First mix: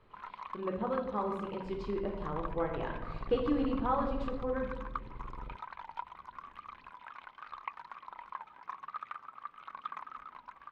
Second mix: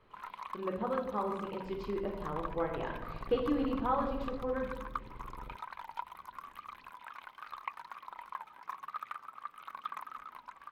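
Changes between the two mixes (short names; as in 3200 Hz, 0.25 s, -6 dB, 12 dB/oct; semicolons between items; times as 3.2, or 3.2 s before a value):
first sound: remove air absorption 120 m; master: add low shelf 160 Hz -4 dB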